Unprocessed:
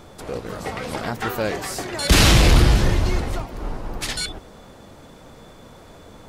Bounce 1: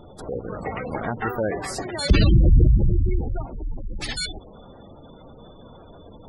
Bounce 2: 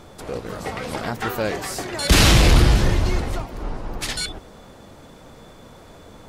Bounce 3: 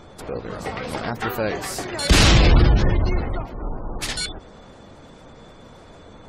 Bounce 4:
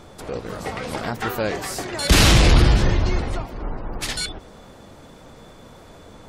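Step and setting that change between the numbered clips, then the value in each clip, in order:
spectral gate, under each frame's peak: -15 dB, -55 dB, -30 dB, -40 dB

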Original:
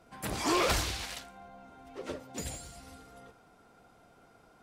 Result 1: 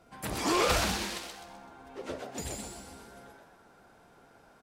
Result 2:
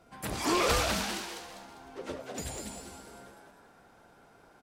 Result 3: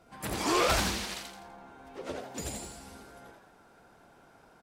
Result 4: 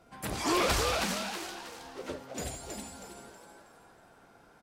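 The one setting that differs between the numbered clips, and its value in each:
frequency-shifting echo, time: 127 ms, 199 ms, 83 ms, 320 ms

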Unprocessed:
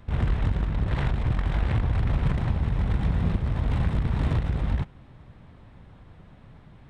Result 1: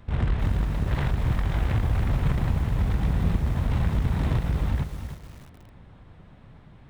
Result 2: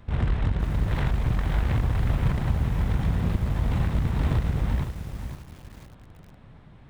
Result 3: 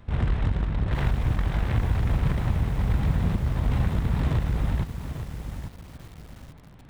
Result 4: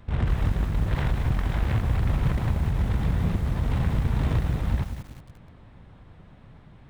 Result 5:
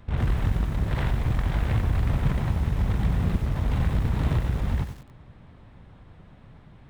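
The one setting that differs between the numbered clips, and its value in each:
bit-crushed delay, time: 309 ms, 515 ms, 844 ms, 185 ms, 93 ms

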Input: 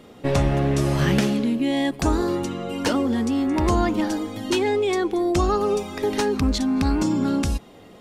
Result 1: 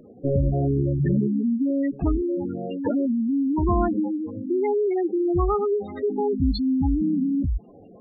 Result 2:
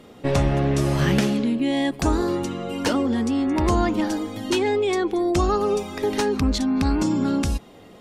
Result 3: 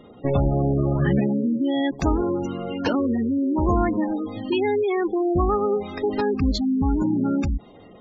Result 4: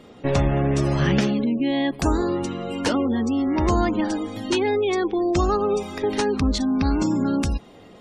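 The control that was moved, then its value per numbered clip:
spectral gate, under each frame's peak: -10 dB, -55 dB, -20 dB, -35 dB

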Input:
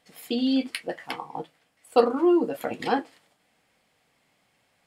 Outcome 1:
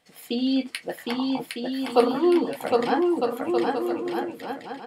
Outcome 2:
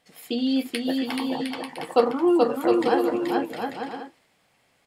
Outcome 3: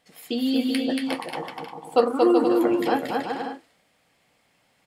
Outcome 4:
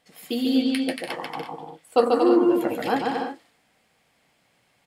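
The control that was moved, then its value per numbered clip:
bouncing-ball echo, first gap: 760 ms, 430 ms, 230 ms, 140 ms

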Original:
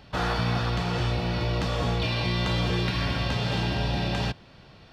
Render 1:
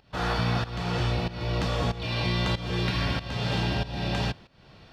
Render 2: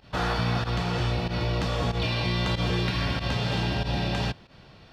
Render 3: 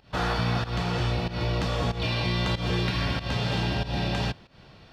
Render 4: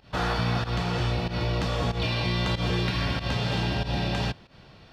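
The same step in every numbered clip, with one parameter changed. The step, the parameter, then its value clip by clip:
volume shaper, release: 401 ms, 76 ms, 182 ms, 114 ms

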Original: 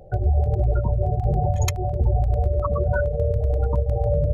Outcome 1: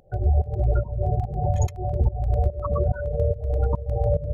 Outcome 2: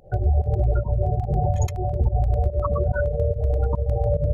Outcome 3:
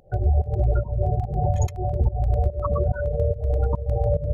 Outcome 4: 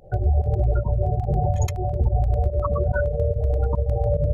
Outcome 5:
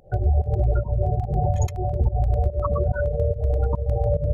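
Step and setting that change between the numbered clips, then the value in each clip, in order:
volume shaper, release: 360 ms, 100 ms, 240 ms, 61 ms, 148 ms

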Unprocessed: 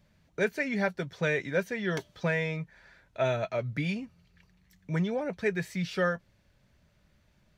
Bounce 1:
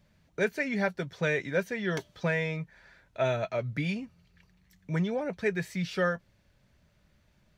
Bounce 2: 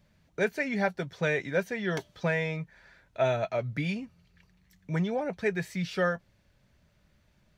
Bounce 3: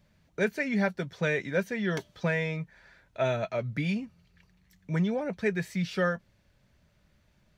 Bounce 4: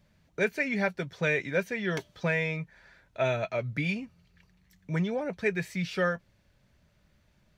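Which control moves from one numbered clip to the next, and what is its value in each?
dynamic bell, frequency: 6.2 kHz, 760 Hz, 210 Hz, 2.4 kHz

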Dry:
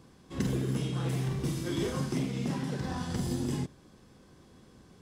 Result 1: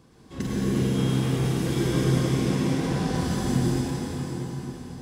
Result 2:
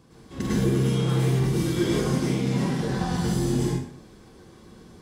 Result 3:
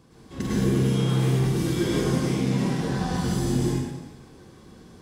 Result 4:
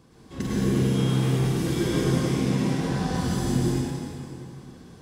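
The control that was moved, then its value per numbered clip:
plate-style reverb, RT60: 5.2 s, 0.55 s, 1.2 s, 2.5 s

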